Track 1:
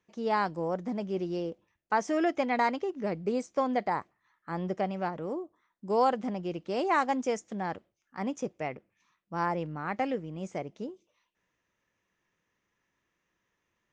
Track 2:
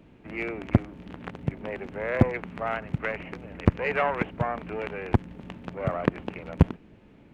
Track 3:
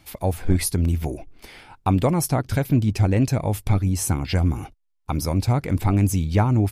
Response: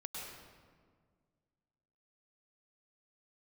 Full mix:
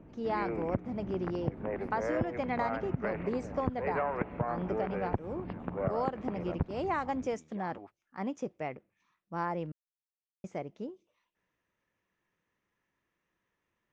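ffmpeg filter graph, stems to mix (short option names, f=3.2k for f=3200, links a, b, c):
-filter_complex "[0:a]lowpass=f=3k:p=1,volume=-2dB,asplit=3[a][b][c];[a]atrim=end=9.72,asetpts=PTS-STARTPTS,afade=t=out:st=9.716:d=0.004:c=hsin[d];[b]atrim=start=9.72:end=10.44,asetpts=PTS-STARTPTS,volume=0[e];[c]atrim=start=10.44,asetpts=PTS-STARTPTS,afade=t=in:d=0.004:c=hsin[f];[d][e][f]concat=n=3:v=0:a=1[g];[1:a]volume=0dB,asplit=2[h][i];[i]volume=-18.5dB[j];[2:a]highpass=500,equalizer=f=1.1k:w=1.9:g=9,alimiter=limit=-21dB:level=0:latency=1,adelay=1200,volume=-17dB[k];[h][k]amix=inputs=2:normalize=0,lowpass=1.4k,alimiter=limit=-12dB:level=0:latency=1:release=327,volume=0dB[l];[3:a]atrim=start_sample=2205[m];[j][m]afir=irnorm=-1:irlink=0[n];[g][l][n]amix=inputs=3:normalize=0,acompressor=threshold=-28dB:ratio=5"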